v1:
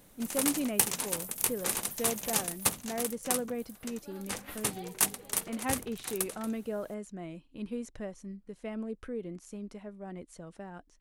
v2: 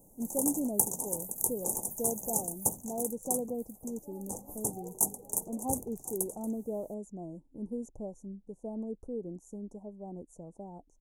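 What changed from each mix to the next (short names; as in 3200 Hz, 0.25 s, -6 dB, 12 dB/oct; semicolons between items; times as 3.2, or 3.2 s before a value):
speech: add high shelf 7600 Hz -6.5 dB; master: add Chebyshev band-stop 880–6500 Hz, order 4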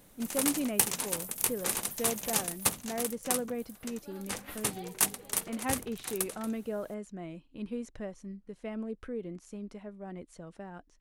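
master: remove Chebyshev band-stop 880–6500 Hz, order 4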